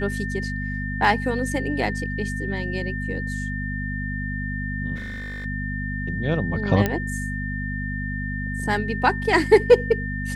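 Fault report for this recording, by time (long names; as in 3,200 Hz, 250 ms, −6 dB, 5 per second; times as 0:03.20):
mains hum 50 Hz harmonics 5 −29 dBFS
whistle 1,800 Hz −31 dBFS
0:04.95–0:05.46: clipping −29.5 dBFS
0:06.86: click −8 dBFS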